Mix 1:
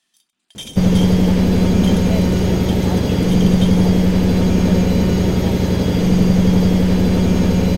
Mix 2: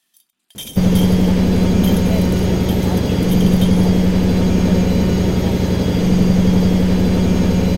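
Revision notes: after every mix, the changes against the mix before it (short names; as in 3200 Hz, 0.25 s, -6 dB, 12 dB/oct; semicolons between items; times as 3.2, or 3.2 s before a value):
first sound: remove polynomial smoothing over 9 samples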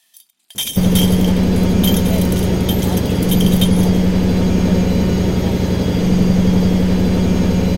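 first sound +9.5 dB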